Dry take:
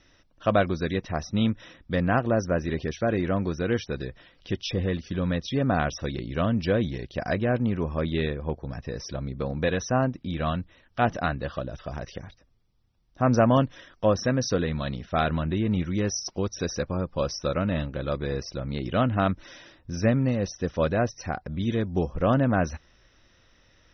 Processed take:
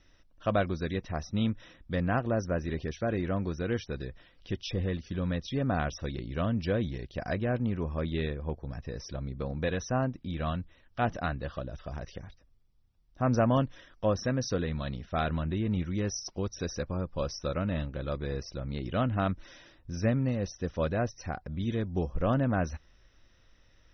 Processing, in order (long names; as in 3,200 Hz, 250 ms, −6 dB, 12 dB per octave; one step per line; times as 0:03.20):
low-shelf EQ 60 Hz +10.5 dB
level −6 dB